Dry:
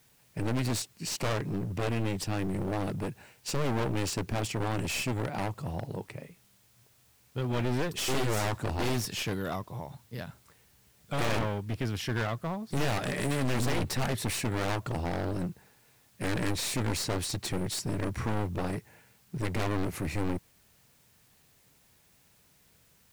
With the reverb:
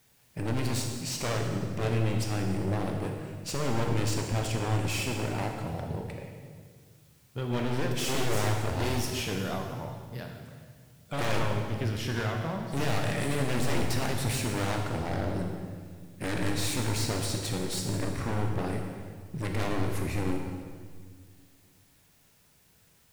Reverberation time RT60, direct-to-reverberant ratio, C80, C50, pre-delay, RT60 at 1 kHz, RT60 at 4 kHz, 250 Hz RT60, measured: 1.8 s, 2.0 dB, 5.0 dB, 4.0 dB, 19 ms, 1.6 s, 1.6 s, 2.3 s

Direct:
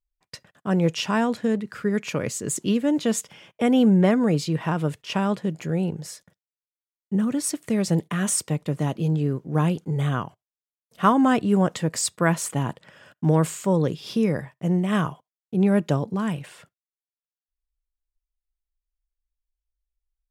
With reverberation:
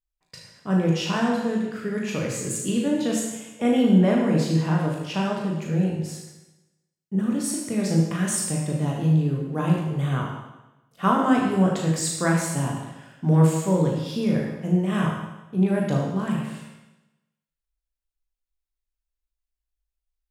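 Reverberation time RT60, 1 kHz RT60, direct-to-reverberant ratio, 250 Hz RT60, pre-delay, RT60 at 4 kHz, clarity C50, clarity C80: 1.0 s, 1.0 s, −2.5 dB, 1.0 s, 19 ms, 0.95 s, 1.5 dB, 4.0 dB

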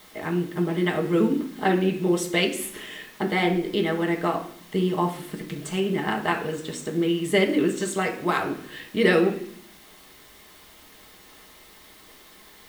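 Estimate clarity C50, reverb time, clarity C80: 10.0 dB, 0.60 s, 13.5 dB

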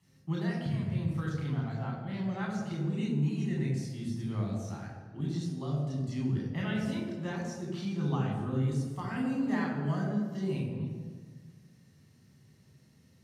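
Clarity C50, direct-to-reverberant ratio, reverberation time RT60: 2.5 dB, −3.0 dB, 1.6 s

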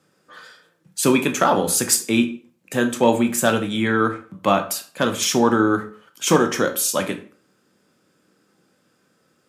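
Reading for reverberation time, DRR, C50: 0.40 s, 6.5 dB, 13.0 dB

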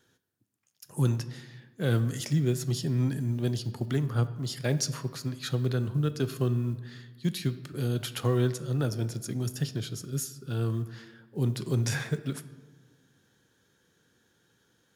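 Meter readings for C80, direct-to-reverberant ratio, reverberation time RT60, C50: 15.5 dB, 11.5 dB, 1.4 s, 14.0 dB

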